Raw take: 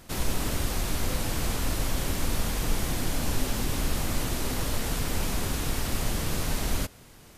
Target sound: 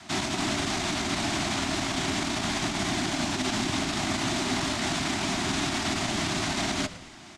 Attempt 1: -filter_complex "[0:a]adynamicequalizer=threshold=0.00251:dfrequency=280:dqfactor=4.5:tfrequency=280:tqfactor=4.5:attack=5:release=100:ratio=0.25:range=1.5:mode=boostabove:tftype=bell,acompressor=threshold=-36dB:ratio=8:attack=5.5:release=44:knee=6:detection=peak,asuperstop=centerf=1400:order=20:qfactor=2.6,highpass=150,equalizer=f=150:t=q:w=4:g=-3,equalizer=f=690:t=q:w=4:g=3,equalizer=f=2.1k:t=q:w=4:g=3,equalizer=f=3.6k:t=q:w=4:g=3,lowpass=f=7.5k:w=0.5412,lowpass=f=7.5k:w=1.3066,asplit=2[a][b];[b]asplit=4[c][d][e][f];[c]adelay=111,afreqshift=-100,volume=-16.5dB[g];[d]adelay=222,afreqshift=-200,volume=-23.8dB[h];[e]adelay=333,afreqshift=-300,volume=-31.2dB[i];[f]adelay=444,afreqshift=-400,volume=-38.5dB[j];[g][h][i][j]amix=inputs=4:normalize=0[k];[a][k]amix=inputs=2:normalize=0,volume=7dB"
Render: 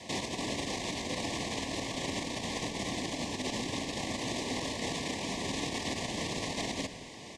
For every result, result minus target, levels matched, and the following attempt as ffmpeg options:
compressor: peak gain reduction +8.5 dB; 500 Hz band +3.5 dB
-filter_complex "[0:a]adynamicequalizer=threshold=0.00251:dfrequency=280:dqfactor=4.5:tfrequency=280:tqfactor=4.5:attack=5:release=100:ratio=0.25:range=1.5:mode=boostabove:tftype=bell,acompressor=threshold=-26dB:ratio=8:attack=5.5:release=44:knee=6:detection=peak,asuperstop=centerf=1400:order=20:qfactor=2.6,highpass=150,equalizer=f=150:t=q:w=4:g=-3,equalizer=f=690:t=q:w=4:g=3,equalizer=f=2.1k:t=q:w=4:g=3,equalizer=f=3.6k:t=q:w=4:g=3,lowpass=f=7.5k:w=0.5412,lowpass=f=7.5k:w=1.3066,asplit=2[a][b];[b]asplit=4[c][d][e][f];[c]adelay=111,afreqshift=-100,volume=-16.5dB[g];[d]adelay=222,afreqshift=-200,volume=-23.8dB[h];[e]adelay=333,afreqshift=-300,volume=-31.2dB[i];[f]adelay=444,afreqshift=-400,volume=-38.5dB[j];[g][h][i][j]amix=inputs=4:normalize=0[k];[a][k]amix=inputs=2:normalize=0,volume=7dB"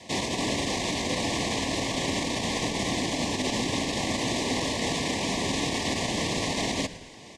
500 Hz band +3.0 dB
-filter_complex "[0:a]adynamicequalizer=threshold=0.00251:dfrequency=280:dqfactor=4.5:tfrequency=280:tqfactor=4.5:attack=5:release=100:ratio=0.25:range=1.5:mode=boostabove:tftype=bell,acompressor=threshold=-26dB:ratio=8:attack=5.5:release=44:knee=6:detection=peak,asuperstop=centerf=490:order=20:qfactor=2.6,highpass=150,equalizer=f=150:t=q:w=4:g=-3,equalizer=f=690:t=q:w=4:g=3,equalizer=f=2.1k:t=q:w=4:g=3,equalizer=f=3.6k:t=q:w=4:g=3,lowpass=f=7.5k:w=0.5412,lowpass=f=7.5k:w=1.3066,asplit=2[a][b];[b]asplit=4[c][d][e][f];[c]adelay=111,afreqshift=-100,volume=-16.5dB[g];[d]adelay=222,afreqshift=-200,volume=-23.8dB[h];[e]adelay=333,afreqshift=-300,volume=-31.2dB[i];[f]adelay=444,afreqshift=-400,volume=-38.5dB[j];[g][h][i][j]amix=inputs=4:normalize=0[k];[a][k]amix=inputs=2:normalize=0,volume=7dB"

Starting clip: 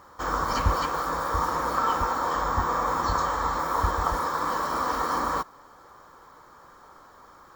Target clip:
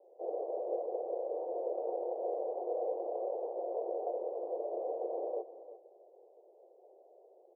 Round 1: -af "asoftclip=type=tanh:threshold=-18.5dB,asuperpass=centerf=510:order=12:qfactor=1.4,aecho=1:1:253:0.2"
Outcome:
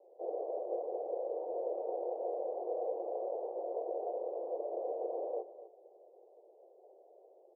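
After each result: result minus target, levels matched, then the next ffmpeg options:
soft clip: distortion +13 dB; echo 94 ms early
-af "asoftclip=type=tanh:threshold=-9.5dB,asuperpass=centerf=510:order=12:qfactor=1.4,aecho=1:1:253:0.2"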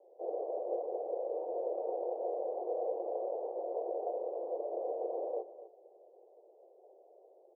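echo 94 ms early
-af "asoftclip=type=tanh:threshold=-9.5dB,asuperpass=centerf=510:order=12:qfactor=1.4,aecho=1:1:347:0.2"

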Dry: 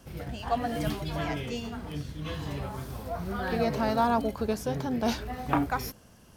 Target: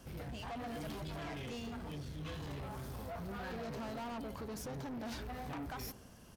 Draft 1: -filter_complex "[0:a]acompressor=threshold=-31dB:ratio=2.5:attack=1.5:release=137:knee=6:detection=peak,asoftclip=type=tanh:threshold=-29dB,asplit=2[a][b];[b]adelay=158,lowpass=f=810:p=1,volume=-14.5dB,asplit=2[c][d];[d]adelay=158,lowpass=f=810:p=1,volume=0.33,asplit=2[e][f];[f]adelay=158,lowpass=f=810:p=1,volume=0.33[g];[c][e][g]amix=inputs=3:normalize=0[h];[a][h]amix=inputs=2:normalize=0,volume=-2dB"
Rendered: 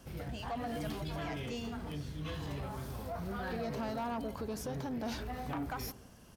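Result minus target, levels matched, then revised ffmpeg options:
soft clip: distortion -9 dB
-filter_complex "[0:a]acompressor=threshold=-31dB:ratio=2.5:attack=1.5:release=137:knee=6:detection=peak,asoftclip=type=tanh:threshold=-38dB,asplit=2[a][b];[b]adelay=158,lowpass=f=810:p=1,volume=-14.5dB,asplit=2[c][d];[d]adelay=158,lowpass=f=810:p=1,volume=0.33,asplit=2[e][f];[f]adelay=158,lowpass=f=810:p=1,volume=0.33[g];[c][e][g]amix=inputs=3:normalize=0[h];[a][h]amix=inputs=2:normalize=0,volume=-2dB"

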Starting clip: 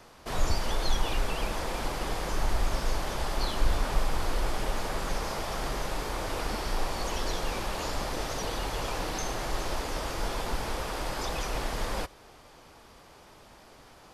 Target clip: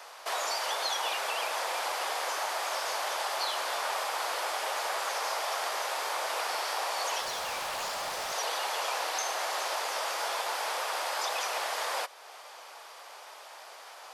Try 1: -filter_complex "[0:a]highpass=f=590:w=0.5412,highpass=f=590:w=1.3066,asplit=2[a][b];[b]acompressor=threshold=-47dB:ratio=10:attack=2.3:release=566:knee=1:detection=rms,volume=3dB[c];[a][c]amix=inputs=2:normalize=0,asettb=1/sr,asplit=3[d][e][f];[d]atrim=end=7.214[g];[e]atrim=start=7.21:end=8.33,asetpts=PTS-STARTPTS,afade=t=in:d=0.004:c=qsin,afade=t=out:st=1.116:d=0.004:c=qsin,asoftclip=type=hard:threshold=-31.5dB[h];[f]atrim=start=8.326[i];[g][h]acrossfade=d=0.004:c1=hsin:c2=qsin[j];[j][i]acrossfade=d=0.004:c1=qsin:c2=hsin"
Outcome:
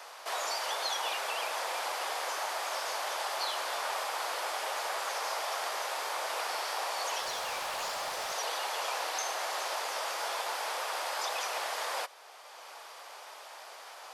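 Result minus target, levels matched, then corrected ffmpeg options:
compressor: peak gain reduction +8.5 dB
-filter_complex "[0:a]highpass=f=590:w=0.5412,highpass=f=590:w=1.3066,asplit=2[a][b];[b]acompressor=threshold=-37.5dB:ratio=10:attack=2.3:release=566:knee=1:detection=rms,volume=3dB[c];[a][c]amix=inputs=2:normalize=0,asettb=1/sr,asplit=3[d][e][f];[d]atrim=end=7.214[g];[e]atrim=start=7.21:end=8.33,asetpts=PTS-STARTPTS,afade=t=in:d=0.004:c=qsin,afade=t=out:st=1.116:d=0.004:c=qsin,asoftclip=type=hard:threshold=-31.5dB[h];[f]atrim=start=8.326[i];[g][h]acrossfade=d=0.004:c1=hsin:c2=qsin[j];[j][i]acrossfade=d=0.004:c1=qsin:c2=hsin"

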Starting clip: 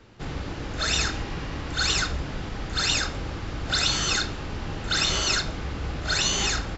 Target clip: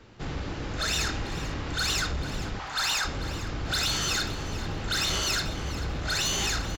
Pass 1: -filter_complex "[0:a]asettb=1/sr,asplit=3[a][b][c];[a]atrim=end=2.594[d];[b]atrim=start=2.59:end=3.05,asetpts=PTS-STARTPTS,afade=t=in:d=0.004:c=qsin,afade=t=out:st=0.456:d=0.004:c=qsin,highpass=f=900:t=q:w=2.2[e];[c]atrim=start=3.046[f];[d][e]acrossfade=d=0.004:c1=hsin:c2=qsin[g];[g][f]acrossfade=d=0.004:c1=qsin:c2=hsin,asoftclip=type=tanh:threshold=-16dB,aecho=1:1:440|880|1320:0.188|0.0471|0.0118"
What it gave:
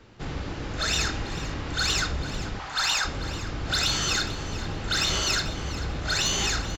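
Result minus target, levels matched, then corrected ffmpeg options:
soft clip: distortion -8 dB
-filter_complex "[0:a]asettb=1/sr,asplit=3[a][b][c];[a]atrim=end=2.594[d];[b]atrim=start=2.59:end=3.05,asetpts=PTS-STARTPTS,afade=t=in:d=0.004:c=qsin,afade=t=out:st=0.456:d=0.004:c=qsin,highpass=f=900:t=q:w=2.2[e];[c]atrim=start=3.046[f];[d][e]acrossfade=d=0.004:c1=hsin:c2=qsin[g];[g][f]acrossfade=d=0.004:c1=qsin:c2=hsin,asoftclip=type=tanh:threshold=-22.5dB,aecho=1:1:440|880|1320:0.188|0.0471|0.0118"

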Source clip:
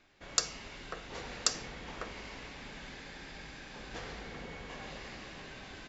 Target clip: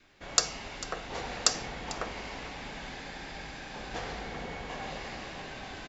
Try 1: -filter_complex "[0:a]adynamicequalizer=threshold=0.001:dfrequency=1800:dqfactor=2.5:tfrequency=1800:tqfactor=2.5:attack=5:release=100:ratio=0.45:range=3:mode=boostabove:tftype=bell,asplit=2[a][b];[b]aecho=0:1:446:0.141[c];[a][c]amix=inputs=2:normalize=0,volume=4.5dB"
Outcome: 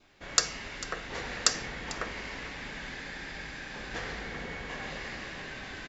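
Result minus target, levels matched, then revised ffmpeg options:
2000 Hz band +3.0 dB
-filter_complex "[0:a]adynamicequalizer=threshold=0.001:dfrequency=760:dqfactor=2.5:tfrequency=760:tqfactor=2.5:attack=5:release=100:ratio=0.45:range=3:mode=boostabove:tftype=bell,asplit=2[a][b];[b]aecho=0:1:446:0.141[c];[a][c]amix=inputs=2:normalize=0,volume=4.5dB"

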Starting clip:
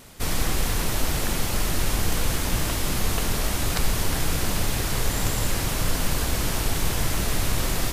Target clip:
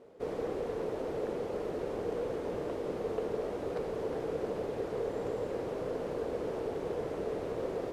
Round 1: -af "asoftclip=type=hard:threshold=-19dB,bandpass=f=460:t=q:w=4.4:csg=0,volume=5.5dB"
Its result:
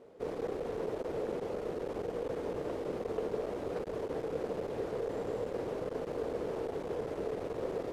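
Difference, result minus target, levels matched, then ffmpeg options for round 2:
hard clip: distortion +27 dB
-af "asoftclip=type=hard:threshold=-11dB,bandpass=f=460:t=q:w=4.4:csg=0,volume=5.5dB"

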